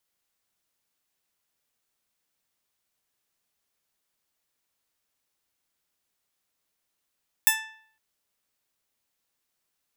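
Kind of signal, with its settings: plucked string A5, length 0.51 s, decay 0.60 s, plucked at 0.19, bright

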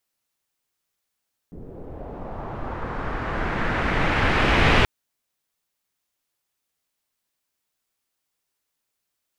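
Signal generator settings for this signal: swept filtered noise pink, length 3.33 s lowpass, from 300 Hz, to 2.6 kHz, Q 1.6, linear, gain ramp +22 dB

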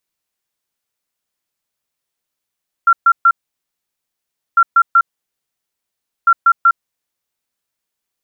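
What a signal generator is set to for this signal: beep pattern sine 1.37 kHz, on 0.06 s, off 0.13 s, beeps 3, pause 1.26 s, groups 3, -5.5 dBFS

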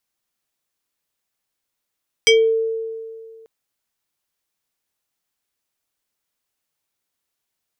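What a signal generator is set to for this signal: FM tone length 1.19 s, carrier 449 Hz, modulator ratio 6.09, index 2.2, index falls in 0.28 s exponential, decay 2.09 s, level -8 dB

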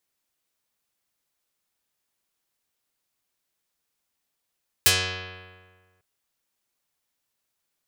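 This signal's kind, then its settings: plucked string F#2, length 1.15 s, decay 1.62 s, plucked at 0.35, dark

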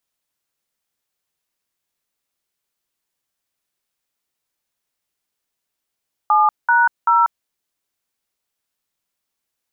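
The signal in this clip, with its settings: DTMF "7#0", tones 190 ms, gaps 196 ms, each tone -13.5 dBFS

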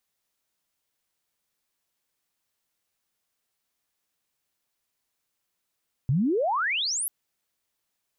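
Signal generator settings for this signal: sweep logarithmic 120 Hz -> 12 kHz -19.5 dBFS -> -26 dBFS 0.99 s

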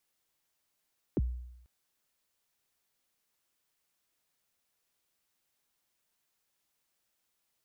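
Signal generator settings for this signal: kick drum length 0.49 s, from 450 Hz, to 61 Hz, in 33 ms, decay 0.85 s, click off, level -23.5 dB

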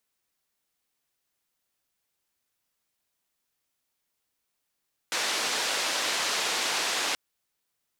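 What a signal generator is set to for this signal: noise band 360–5500 Hz, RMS -28.5 dBFS 2.03 s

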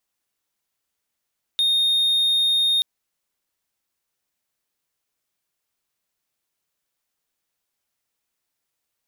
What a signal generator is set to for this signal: tone triangle 3.69 kHz -14.5 dBFS 1.23 s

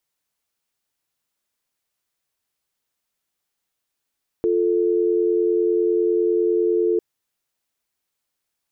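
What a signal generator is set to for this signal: call progress tone dial tone, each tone -19 dBFS 2.55 s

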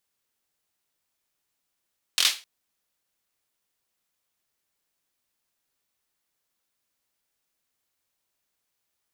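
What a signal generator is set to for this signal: hand clap length 0.26 s, apart 23 ms, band 3.5 kHz, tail 0.29 s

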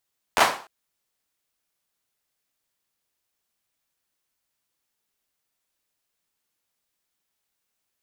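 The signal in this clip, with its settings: hand clap length 0.30 s, apart 11 ms, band 870 Hz, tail 0.39 s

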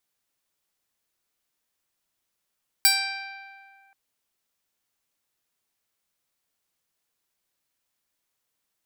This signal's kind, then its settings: plucked string G5, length 1.08 s, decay 2.15 s, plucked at 0.23, bright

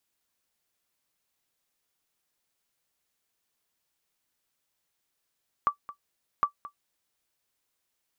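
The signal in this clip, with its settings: sonar ping 1.16 kHz, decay 0.10 s, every 0.76 s, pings 2, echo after 0.22 s, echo -17 dB -14 dBFS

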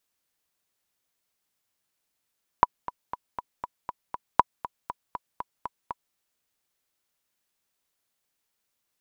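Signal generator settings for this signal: metronome 238 bpm, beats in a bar 7, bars 2, 982 Hz, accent 16 dB -2.5 dBFS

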